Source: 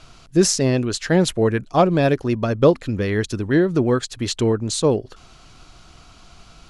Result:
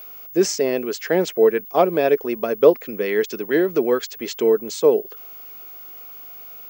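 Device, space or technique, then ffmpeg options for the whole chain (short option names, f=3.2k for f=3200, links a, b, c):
old television with a line whistle: -filter_complex "[0:a]asettb=1/sr,asplit=3[a][b][c];[a]atrim=end=3.064[d];[b]atrim=start=3.06:end=4.13,asetpts=PTS-STARTPTS,afade=t=in:d=0.004:c=qsin,afade=t=out:st=1.066:d=0.004:c=qsin,equalizer=f=3.9k:t=o:w=2:g=4.5[e];[c]atrim=start=4.126[f];[d][e]acrossfade=d=0.004:c1=hsin:c2=qsin[g];[g][f]acrossfade=d=0.004:c1=qsin:c2=hsin,highpass=f=220:w=0.5412,highpass=f=220:w=1.3066,equalizer=f=270:t=q:w=4:g=-5,equalizer=f=440:t=q:w=4:g=9,equalizer=f=670:t=q:w=4:g=3,equalizer=f=2.2k:t=q:w=4:g=5,equalizer=f=4k:t=q:w=4:g=-6,lowpass=f=7.1k:w=0.5412,lowpass=f=7.1k:w=1.3066,aeval=exprs='val(0)+0.0224*sin(2*PI*15625*n/s)':c=same,volume=-3dB"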